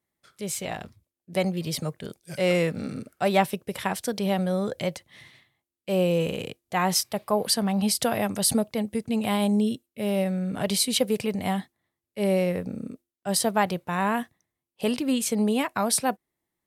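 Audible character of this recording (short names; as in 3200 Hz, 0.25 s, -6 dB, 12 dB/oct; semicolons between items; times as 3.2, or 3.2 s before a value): noise floor -88 dBFS; spectral tilt -4.0 dB/oct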